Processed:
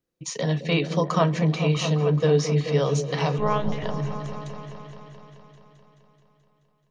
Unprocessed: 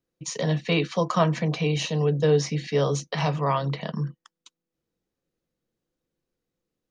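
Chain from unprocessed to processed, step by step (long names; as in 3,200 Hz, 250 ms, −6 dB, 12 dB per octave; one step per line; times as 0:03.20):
0:03.38–0:03.84: one-pitch LPC vocoder at 8 kHz 210 Hz
echo whose low-pass opens from repeat to repeat 215 ms, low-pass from 400 Hz, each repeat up 1 octave, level −6 dB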